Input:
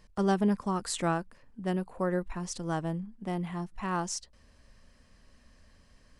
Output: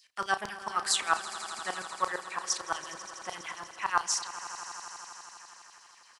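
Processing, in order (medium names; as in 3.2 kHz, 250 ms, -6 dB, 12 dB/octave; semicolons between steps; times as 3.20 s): bass shelf 440 Hz +10 dB; in parallel at -5 dB: saturation -18 dBFS, distortion -13 dB; on the sum: LFO high-pass saw down 8.8 Hz 940–5600 Hz; doubling 33 ms -12 dB; echo with a slow build-up 82 ms, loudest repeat 5, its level -17.5 dB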